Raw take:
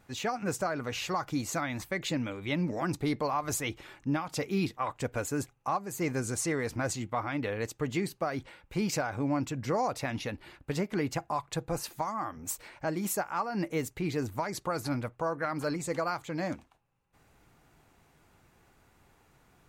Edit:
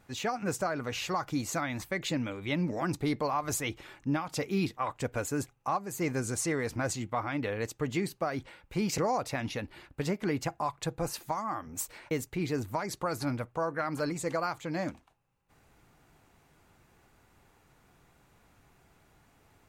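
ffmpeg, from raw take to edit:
ffmpeg -i in.wav -filter_complex "[0:a]asplit=3[link_01][link_02][link_03];[link_01]atrim=end=8.982[link_04];[link_02]atrim=start=9.678:end=12.812[link_05];[link_03]atrim=start=13.748[link_06];[link_04][link_05]acrossfade=duration=0.004:curve1=hsin:curve2=hsin[link_07];[link_07][link_06]acrossfade=duration=0.004:curve1=hsin:curve2=hsin" out.wav

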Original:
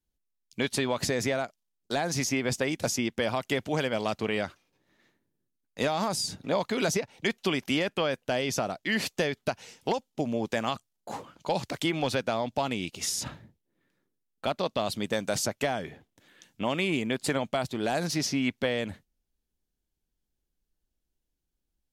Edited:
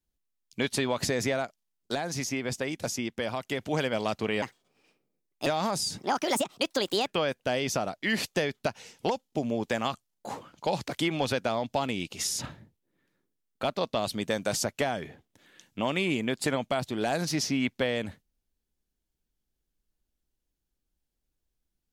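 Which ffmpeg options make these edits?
ffmpeg -i in.wav -filter_complex "[0:a]asplit=7[link_01][link_02][link_03][link_04][link_05][link_06][link_07];[link_01]atrim=end=1.952[link_08];[link_02]atrim=start=1.948:end=3.612,asetpts=PTS-STARTPTS,volume=-3.5dB[link_09];[link_03]atrim=start=3.608:end=4.424[link_10];[link_04]atrim=start=4.42:end=5.84,asetpts=PTS-STARTPTS,asetrate=59976,aresample=44100[link_11];[link_05]atrim=start=5.836:end=6.354[link_12];[link_06]atrim=start=6.35:end=7.89,asetpts=PTS-STARTPTS,asetrate=62181,aresample=44100[link_13];[link_07]atrim=start=7.886[link_14];[link_08][link_09]acrossfade=duration=0.004:curve1=hsin:curve2=hsin[link_15];[link_15][link_10]acrossfade=duration=0.004:curve1=hsin:curve2=hsin[link_16];[link_16][link_11]acrossfade=duration=0.004:curve1=hsin:curve2=hsin[link_17];[link_17][link_12]acrossfade=duration=0.004:curve1=hsin:curve2=hsin[link_18];[link_18][link_13]acrossfade=duration=0.004:curve1=hsin:curve2=hsin[link_19];[link_19][link_14]acrossfade=duration=0.004:curve1=hsin:curve2=hsin" out.wav

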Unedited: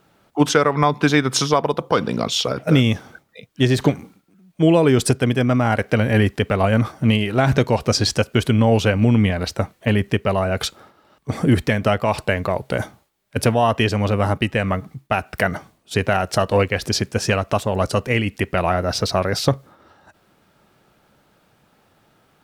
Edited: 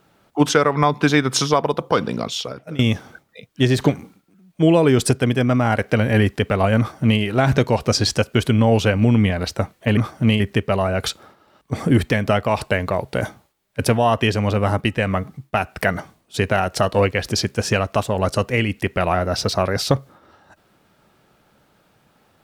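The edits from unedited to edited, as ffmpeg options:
ffmpeg -i in.wav -filter_complex "[0:a]asplit=4[link_01][link_02][link_03][link_04];[link_01]atrim=end=2.79,asetpts=PTS-STARTPTS,afade=type=out:start_time=1.96:duration=0.83:silence=0.0841395[link_05];[link_02]atrim=start=2.79:end=9.972,asetpts=PTS-STARTPTS,afade=type=in:duration=0.004:curve=hsin:silence=0.0841395[link_06];[link_03]atrim=start=6.778:end=7.212[link_07];[link_04]atrim=start=9.968[link_08];[link_05][link_06]concat=n=2:v=0:a=1[link_09];[link_09][link_07]acrossfade=duration=0.004:curve1=hsin:curve2=hsin[link_10];[link_10][link_08]acrossfade=duration=0.004:curve1=hsin:curve2=hsin" out.wav

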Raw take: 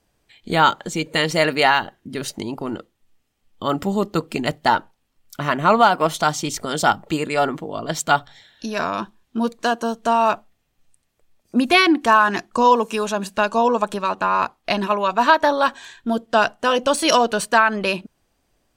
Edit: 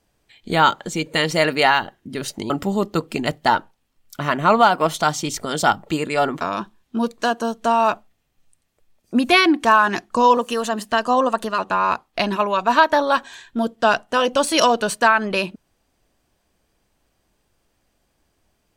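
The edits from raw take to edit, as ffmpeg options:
ffmpeg -i in.wav -filter_complex "[0:a]asplit=5[link_01][link_02][link_03][link_04][link_05];[link_01]atrim=end=2.502[link_06];[link_02]atrim=start=3.698:end=7.612[link_07];[link_03]atrim=start=8.818:end=12.784[link_08];[link_04]atrim=start=12.78:end=14.09,asetpts=PTS-STARTPTS,asetrate=47628,aresample=44100[link_09];[link_05]atrim=start=14.086[link_10];[link_06][link_07]acrossfade=duration=0.004:curve1=hsin:curve2=hsin[link_11];[link_11][link_08]acrossfade=duration=0.004:curve1=hsin:curve2=hsin[link_12];[link_12][link_09]acrossfade=duration=0.004:curve1=hsin:curve2=hsin[link_13];[link_13][link_10]acrossfade=duration=0.004:curve1=hsin:curve2=hsin" out.wav

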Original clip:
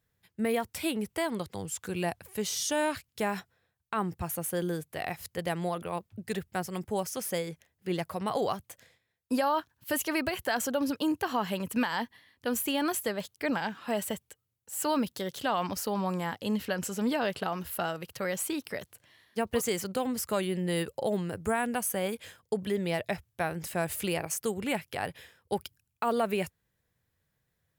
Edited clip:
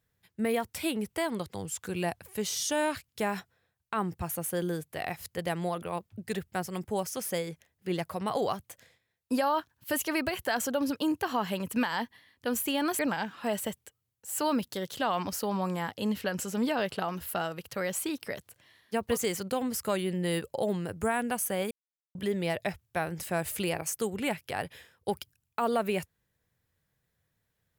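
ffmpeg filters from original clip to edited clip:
ffmpeg -i in.wav -filter_complex "[0:a]asplit=4[link_01][link_02][link_03][link_04];[link_01]atrim=end=12.992[link_05];[link_02]atrim=start=13.428:end=22.15,asetpts=PTS-STARTPTS,afade=type=out:start_time=8.718:duration=0.004:curve=hsin[link_06];[link_03]atrim=start=22.15:end=22.59,asetpts=PTS-STARTPTS,volume=0[link_07];[link_04]atrim=start=22.59,asetpts=PTS-STARTPTS,afade=type=in:duration=0.004:curve=hsin[link_08];[link_06][link_07][link_08]concat=n=3:v=0:a=1[link_09];[link_05][link_09]acrossfade=duration=0.004:curve1=hsin:curve2=hsin" out.wav

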